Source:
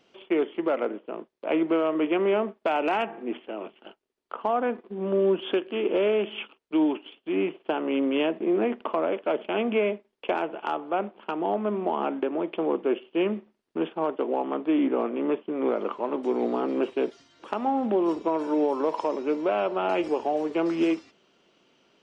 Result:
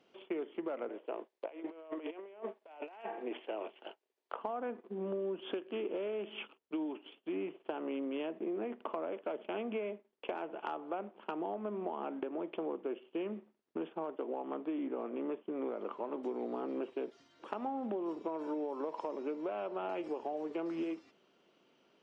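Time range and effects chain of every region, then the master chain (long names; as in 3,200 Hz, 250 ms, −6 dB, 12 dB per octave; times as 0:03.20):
0:00.89–0:04.39: high-pass filter 460 Hz + parametric band 1,300 Hz −6 dB 0.38 octaves + compressor whose output falls as the input rises −35 dBFS, ratio −0.5
whole clip: high-pass filter 340 Hz 6 dB per octave; spectral tilt −2 dB per octave; downward compressor, threshold −30 dBFS; level −5 dB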